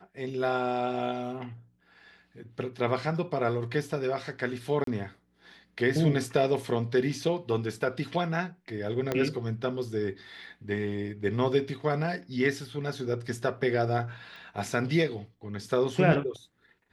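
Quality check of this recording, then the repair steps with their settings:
4.84–4.87 gap 33 ms
9.12 pop -14 dBFS
14.36 pop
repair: de-click; interpolate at 4.84, 33 ms

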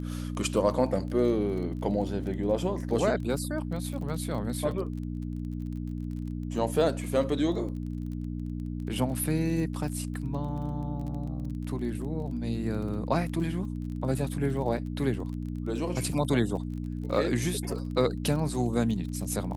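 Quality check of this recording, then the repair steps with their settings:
crackle 26/s -37 dBFS
hum 60 Hz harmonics 5 -34 dBFS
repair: de-click; de-hum 60 Hz, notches 5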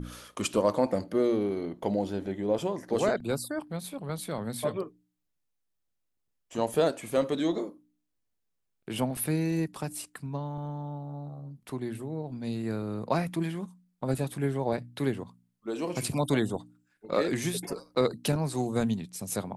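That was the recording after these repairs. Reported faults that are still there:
none

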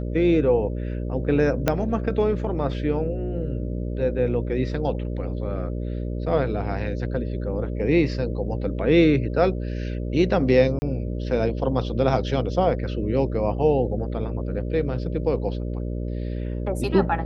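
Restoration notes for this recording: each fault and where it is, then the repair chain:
buzz 60 Hz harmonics 10 -28 dBFS
1.68 pop -6 dBFS
10.79–10.82 gap 30 ms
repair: de-click; de-hum 60 Hz, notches 10; interpolate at 10.79, 30 ms

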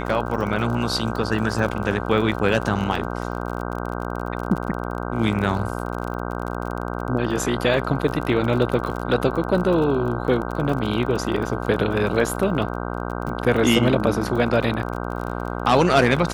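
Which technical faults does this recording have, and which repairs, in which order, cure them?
buzz 60 Hz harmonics 26 -28 dBFS
crackle 34/s -28 dBFS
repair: de-click; de-hum 60 Hz, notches 26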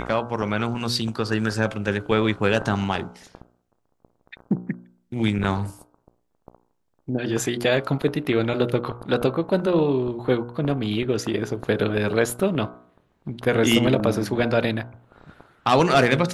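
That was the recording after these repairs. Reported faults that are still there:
none

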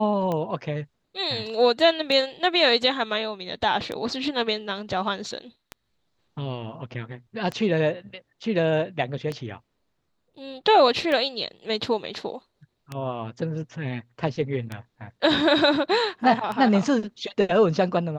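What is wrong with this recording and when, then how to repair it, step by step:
tick 33 1/3 rpm -16 dBFS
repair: de-click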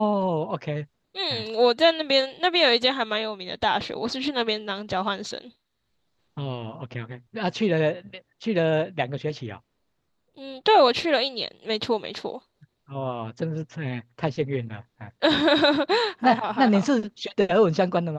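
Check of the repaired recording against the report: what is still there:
none

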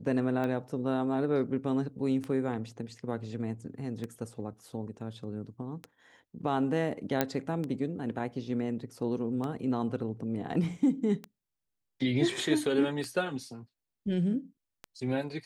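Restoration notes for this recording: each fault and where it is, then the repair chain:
tick 33 1/3 rpm -23 dBFS
7.21 pop -11 dBFS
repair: de-click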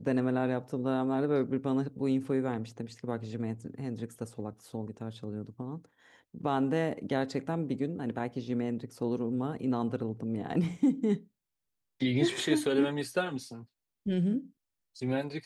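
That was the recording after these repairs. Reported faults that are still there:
none

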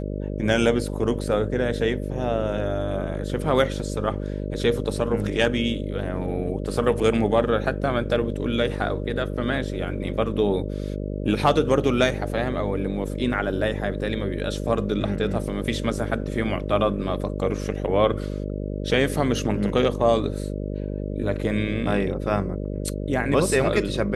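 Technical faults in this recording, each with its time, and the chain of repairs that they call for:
buzz 50 Hz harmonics 12 -29 dBFS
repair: de-hum 50 Hz, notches 12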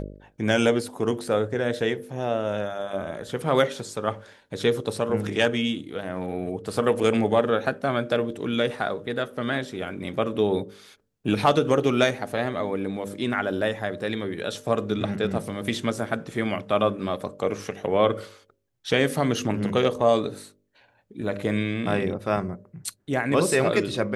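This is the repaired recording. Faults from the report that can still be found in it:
none

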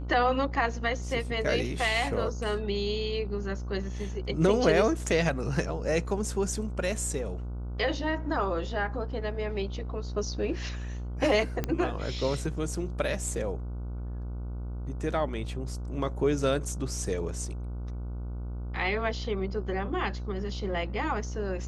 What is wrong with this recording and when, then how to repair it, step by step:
buzz 60 Hz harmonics 25 -35 dBFS
11.64 pop -15 dBFS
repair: de-click; de-hum 60 Hz, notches 25

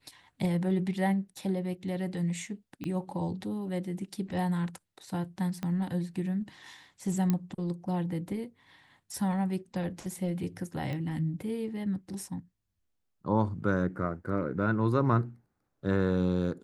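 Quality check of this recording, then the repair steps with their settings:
2.84 pop -24 dBFS
5.63 pop -21 dBFS
7.3 pop -15 dBFS
10.93 pop -26 dBFS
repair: de-click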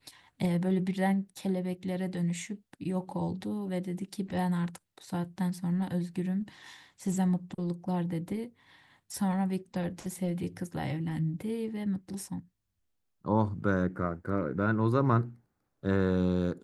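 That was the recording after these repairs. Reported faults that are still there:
2.84 pop
5.63 pop

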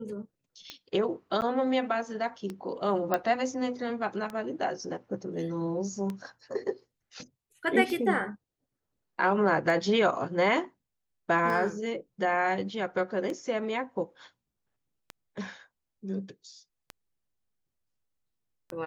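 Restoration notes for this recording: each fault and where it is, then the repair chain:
tick 33 1/3 rpm -22 dBFS
1.41–1.42 gap 9.3 ms
3.14 pop -13 dBFS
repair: de-click; interpolate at 1.41, 9.3 ms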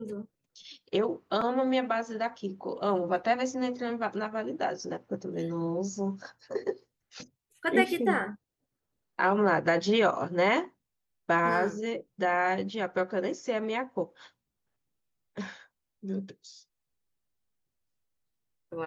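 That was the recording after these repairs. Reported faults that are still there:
none

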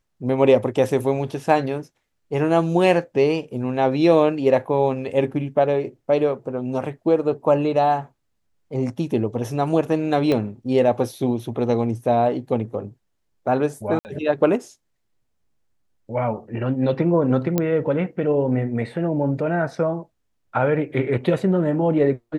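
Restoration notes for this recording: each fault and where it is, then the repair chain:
10.32 pop -11 dBFS
13.99–14.05 gap 59 ms
17.58 pop -7 dBFS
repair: de-click; interpolate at 13.99, 59 ms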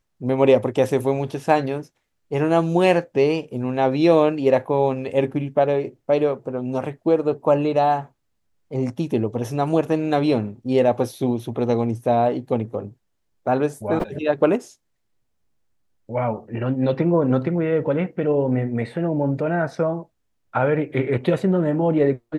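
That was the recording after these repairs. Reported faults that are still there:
10.32 pop

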